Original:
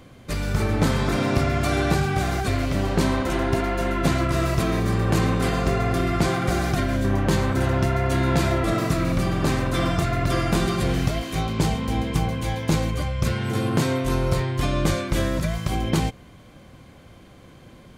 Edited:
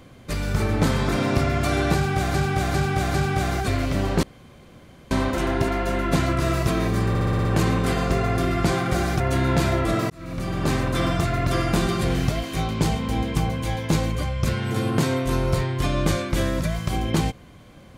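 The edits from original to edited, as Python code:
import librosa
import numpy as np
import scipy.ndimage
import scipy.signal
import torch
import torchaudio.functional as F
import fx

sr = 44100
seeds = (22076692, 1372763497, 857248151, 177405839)

y = fx.edit(x, sr, fx.repeat(start_s=1.94, length_s=0.4, count=4),
    fx.insert_room_tone(at_s=3.03, length_s=0.88),
    fx.stutter(start_s=5.01, slice_s=0.06, count=7),
    fx.cut(start_s=6.76, length_s=1.23),
    fx.fade_in_span(start_s=8.89, length_s=0.62), tone=tone)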